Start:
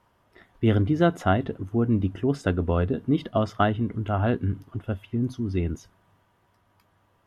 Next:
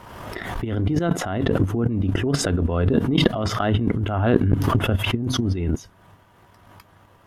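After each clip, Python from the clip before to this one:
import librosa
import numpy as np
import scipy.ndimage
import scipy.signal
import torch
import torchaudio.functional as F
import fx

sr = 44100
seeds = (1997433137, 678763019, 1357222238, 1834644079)

y = fx.over_compress(x, sr, threshold_db=-32.0, ratio=-1.0)
y = fx.transient(y, sr, attack_db=10, sustain_db=-4)
y = fx.pre_swell(y, sr, db_per_s=37.0)
y = y * 10.0 ** (3.5 / 20.0)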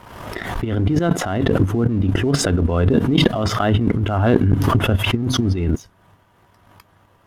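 y = fx.leveller(x, sr, passes=1)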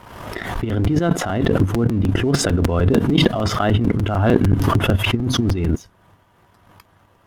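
y = fx.buffer_crackle(x, sr, first_s=0.69, period_s=0.15, block=256, kind='repeat')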